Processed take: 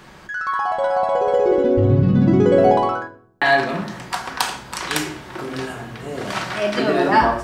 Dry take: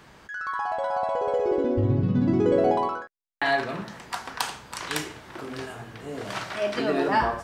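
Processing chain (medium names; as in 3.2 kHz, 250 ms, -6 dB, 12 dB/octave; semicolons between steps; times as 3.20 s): simulated room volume 960 m³, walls furnished, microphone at 1 m; trim +6.5 dB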